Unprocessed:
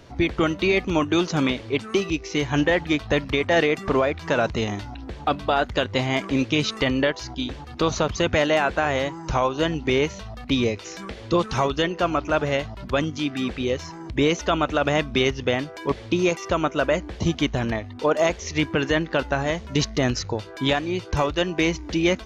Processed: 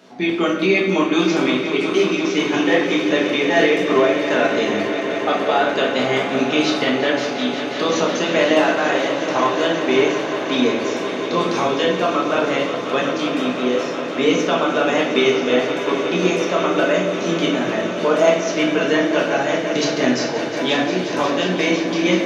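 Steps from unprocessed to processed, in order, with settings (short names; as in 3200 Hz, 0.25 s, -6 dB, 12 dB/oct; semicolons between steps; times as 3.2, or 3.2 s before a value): HPF 200 Hz 24 dB/oct; swelling echo 0.178 s, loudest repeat 5, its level -13.5 dB; shoebox room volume 200 m³, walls mixed, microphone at 1.4 m; gain -1 dB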